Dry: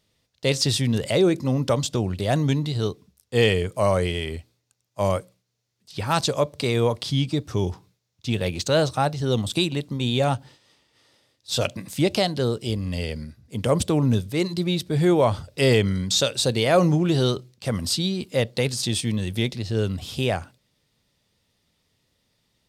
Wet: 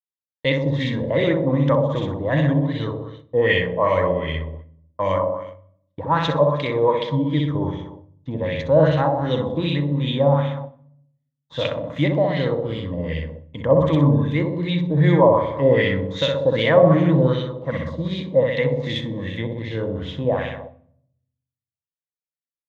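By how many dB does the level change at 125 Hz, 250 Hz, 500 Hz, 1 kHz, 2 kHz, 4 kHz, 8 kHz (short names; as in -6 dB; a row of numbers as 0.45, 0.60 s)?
+3.0 dB, +2.5 dB, +4.5 dB, +4.5 dB, +4.0 dB, -4.0 dB, under -20 dB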